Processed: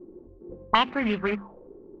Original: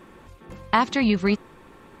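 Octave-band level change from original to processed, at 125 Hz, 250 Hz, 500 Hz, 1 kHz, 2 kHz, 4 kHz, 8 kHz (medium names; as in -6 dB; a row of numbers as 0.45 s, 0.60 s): -8.0 dB, -6.5 dB, -2.5 dB, -1.0 dB, -2.0 dB, +2.0 dB, no reading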